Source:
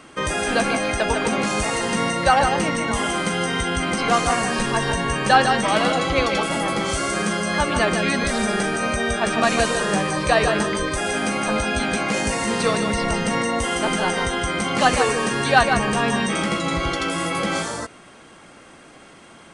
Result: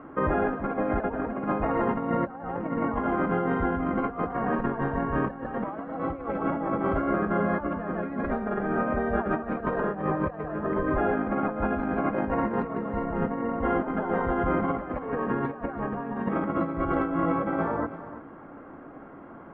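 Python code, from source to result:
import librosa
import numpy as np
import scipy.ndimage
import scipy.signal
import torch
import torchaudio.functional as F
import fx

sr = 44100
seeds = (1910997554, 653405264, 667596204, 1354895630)

p1 = scipy.signal.sosfilt(scipy.signal.butter(4, 1400.0, 'lowpass', fs=sr, output='sos'), x)
p2 = fx.peak_eq(p1, sr, hz=280.0, db=7.0, octaves=0.31)
p3 = fx.hum_notches(p2, sr, base_hz=60, count=5)
p4 = fx.over_compress(p3, sr, threshold_db=-25.0, ratio=-0.5)
p5 = p4 + fx.echo_single(p4, sr, ms=330, db=-13.5, dry=0)
y = p5 * 10.0 ** (-2.5 / 20.0)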